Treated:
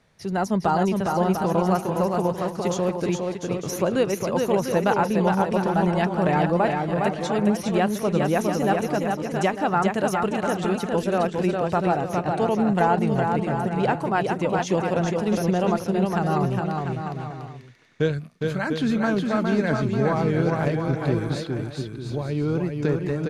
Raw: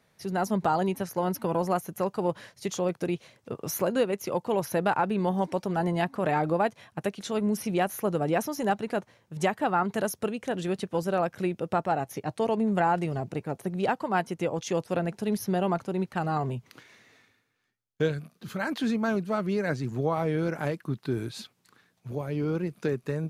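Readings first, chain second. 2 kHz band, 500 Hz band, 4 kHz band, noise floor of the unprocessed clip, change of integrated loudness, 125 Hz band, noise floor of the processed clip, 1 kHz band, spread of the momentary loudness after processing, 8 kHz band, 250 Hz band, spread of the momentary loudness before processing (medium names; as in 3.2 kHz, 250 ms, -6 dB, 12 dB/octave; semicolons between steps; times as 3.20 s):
+5.0 dB, +5.5 dB, +5.0 dB, -69 dBFS, +5.5 dB, +7.5 dB, -37 dBFS, +5.0 dB, 6 LU, +3.0 dB, +6.5 dB, 8 LU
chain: low-pass 8.7 kHz 12 dB/octave; bass shelf 74 Hz +11.5 dB; bouncing-ball echo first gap 410 ms, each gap 0.7×, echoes 5; trim +3 dB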